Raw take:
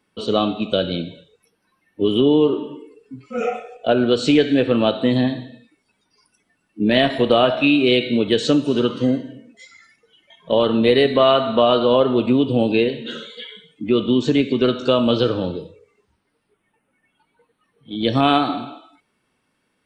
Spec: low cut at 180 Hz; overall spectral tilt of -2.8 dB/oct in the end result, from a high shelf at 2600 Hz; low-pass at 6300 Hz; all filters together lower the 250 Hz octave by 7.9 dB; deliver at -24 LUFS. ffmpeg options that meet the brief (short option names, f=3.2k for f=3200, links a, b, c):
-af "highpass=180,lowpass=6.3k,equalizer=f=250:t=o:g=-8.5,highshelf=f=2.6k:g=-4.5,volume=-2.5dB"